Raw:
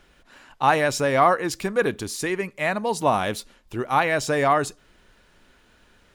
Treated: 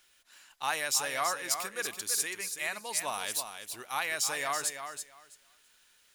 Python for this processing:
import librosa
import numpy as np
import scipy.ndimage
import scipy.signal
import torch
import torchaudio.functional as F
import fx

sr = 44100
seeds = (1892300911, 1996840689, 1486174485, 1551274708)

p1 = scipy.signal.lfilter([1.0, -0.97], [1.0], x)
p2 = p1 + fx.echo_feedback(p1, sr, ms=330, feedback_pct=17, wet_db=-8.0, dry=0)
y = F.gain(torch.from_numpy(p2), 3.0).numpy()